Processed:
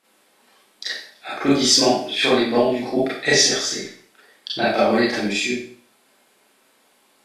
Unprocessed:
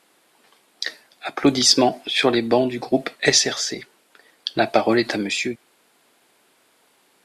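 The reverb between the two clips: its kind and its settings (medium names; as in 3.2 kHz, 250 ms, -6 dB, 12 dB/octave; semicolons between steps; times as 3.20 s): Schroeder reverb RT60 0.5 s, combs from 29 ms, DRR -9 dB; trim -8.5 dB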